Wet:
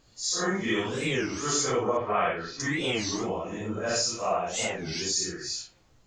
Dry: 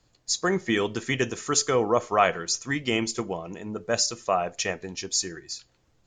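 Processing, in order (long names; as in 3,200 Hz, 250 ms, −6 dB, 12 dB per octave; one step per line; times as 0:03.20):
random phases in long frames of 200 ms
0:01.97–0:02.60: low-pass filter 3,200 Hz 24 dB per octave
downward compressor 2 to 1, threshold −35 dBFS, peak gain reduction 10 dB
wow of a warped record 33 1/3 rpm, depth 250 cents
level +5 dB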